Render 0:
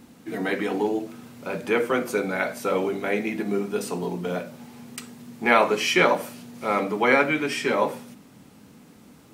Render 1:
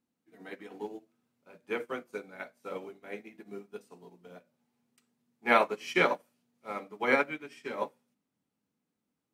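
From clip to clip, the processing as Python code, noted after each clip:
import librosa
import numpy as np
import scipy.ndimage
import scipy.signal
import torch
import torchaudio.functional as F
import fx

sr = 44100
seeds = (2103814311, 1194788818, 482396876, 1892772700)

y = fx.low_shelf(x, sr, hz=110.0, db=-6.0)
y = fx.upward_expand(y, sr, threshold_db=-35.0, expansion=2.5)
y = y * 10.0 ** (-3.5 / 20.0)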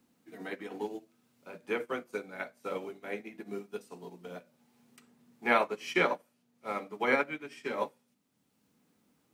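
y = fx.band_squash(x, sr, depth_pct=40)
y = y * 10.0 ** (1.5 / 20.0)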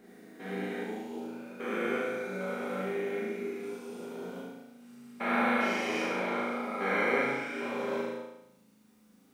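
y = fx.spec_steps(x, sr, hold_ms=400)
y = fx.room_flutter(y, sr, wall_m=6.4, rt60_s=0.82)
y = fx.rev_gated(y, sr, seeds[0], gate_ms=270, shape='falling', drr_db=-3.0)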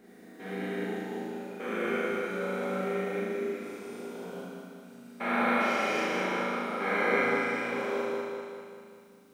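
y = fx.echo_feedback(x, sr, ms=197, feedback_pct=56, wet_db=-4)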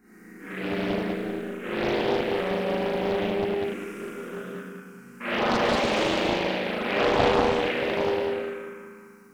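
y = fx.env_phaser(x, sr, low_hz=570.0, high_hz=1600.0, full_db=-25.0)
y = fx.rev_freeverb(y, sr, rt60_s=0.8, hf_ratio=0.85, predelay_ms=0, drr_db=-9.0)
y = fx.doppler_dist(y, sr, depth_ms=0.86)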